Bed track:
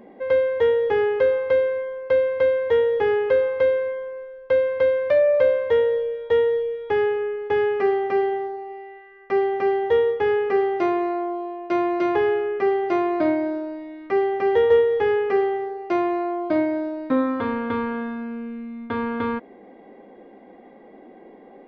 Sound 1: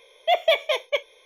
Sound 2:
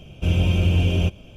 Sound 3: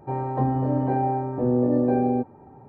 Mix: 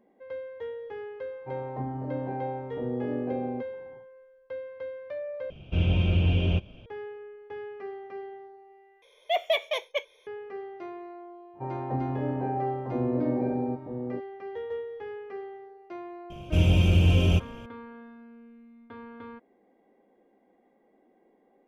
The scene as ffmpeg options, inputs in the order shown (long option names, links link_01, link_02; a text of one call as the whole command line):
ffmpeg -i bed.wav -i cue0.wav -i cue1.wav -i cue2.wav -filter_complex "[3:a]asplit=2[link_01][link_02];[2:a]asplit=2[link_03][link_04];[0:a]volume=-18.5dB[link_05];[link_03]lowpass=frequency=4000:width=0.5412,lowpass=frequency=4000:width=1.3066[link_06];[link_02]aecho=1:1:953:0.501[link_07];[link_05]asplit=3[link_08][link_09][link_10];[link_08]atrim=end=5.504[link_11];[link_06]atrim=end=1.36,asetpts=PTS-STARTPTS,volume=-4.5dB[link_12];[link_09]atrim=start=6.856:end=9.024[link_13];[1:a]atrim=end=1.25,asetpts=PTS-STARTPTS,volume=-6dB[link_14];[link_10]atrim=start=10.266[link_15];[link_01]atrim=end=2.68,asetpts=PTS-STARTPTS,volume=-10.5dB,afade=type=in:duration=0.1,afade=type=out:start_time=2.58:duration=0.1,adelay=1390[link_16];[link_07]atrim=end=2.68,asetpts=PTS-STARTPTS,volume=-7dB,afade=type=in:duration=0.05,afade=type=out:start_time=2.63:duration=0.05,adelay=11530[link_17];[link_04]atrim=end=1.36,asetpts=PTS-STARTPTS,volume=-1.5dB,afade=type=in:duration=0.004:curve=hsin,afade=type=out:start_time=1.356:duration=0.004:curve=hsin,adelay=16300[link_18];[link_11][link_12]acrossfade=duration=0.004:curve1=hsin:curve2=hsin[link_19];[link_19][link_13]acrossfade=duration=0.004:curve1=hsin:curve2=hsin[link_20];[link_20][link_14]acrossfade=duration=0.004:curve1=hsin:curve2=hsin[link_21];[link_21][link_15]acrossfade=duration=0.004:curve1=hsin:curve2=hsin[link_22];[link_22][link_16][link_17][link_18]amix=inputs=4:normalize=0" out.wav